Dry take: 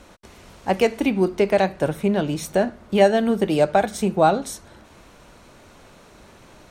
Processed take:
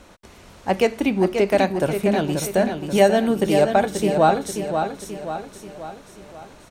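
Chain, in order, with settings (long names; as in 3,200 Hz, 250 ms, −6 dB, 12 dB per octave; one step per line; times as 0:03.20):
0:01.46–0:03.59: high-shelf EQ 6,900 Hz +7.5 dB
repeating echo 534 ms, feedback 50%, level −7 dB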